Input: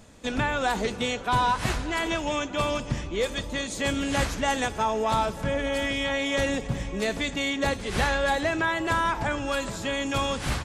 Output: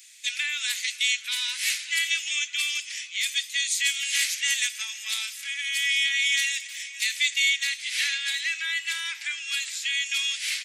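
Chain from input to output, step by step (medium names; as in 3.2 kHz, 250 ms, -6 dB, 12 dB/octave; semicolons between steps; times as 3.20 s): elliptic high-pass 2.1 kHz, stop band 80 dB; treble shelf 9.5 kHz +7.5 dB, from 7.65 s -3 dB; trim +8 dB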